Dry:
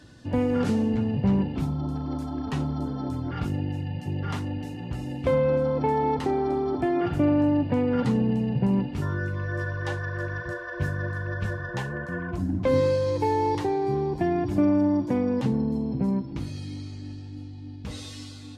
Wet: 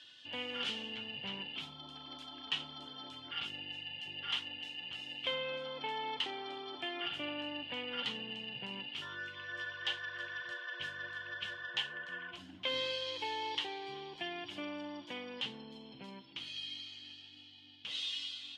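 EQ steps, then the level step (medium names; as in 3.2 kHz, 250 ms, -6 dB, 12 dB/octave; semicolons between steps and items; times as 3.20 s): band-pass filter 3.1 kHz, Q 7.8; +14.5 dB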